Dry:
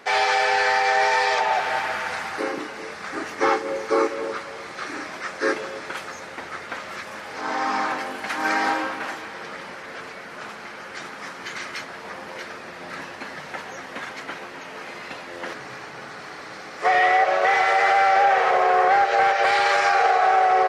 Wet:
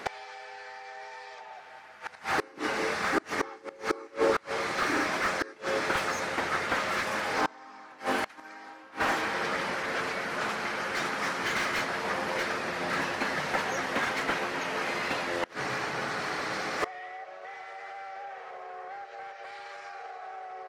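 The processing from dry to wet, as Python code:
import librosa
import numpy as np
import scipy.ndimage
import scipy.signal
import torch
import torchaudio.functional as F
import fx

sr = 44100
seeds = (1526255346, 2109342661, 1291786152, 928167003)

y = fx.gate_flip(x, sr, shuts_db=-18.0, range_db=-29)
y = fx.slew_limit(y, sr, full_power_hz=55.0)
y = y * 10.0 ** (5.0 / 20.0)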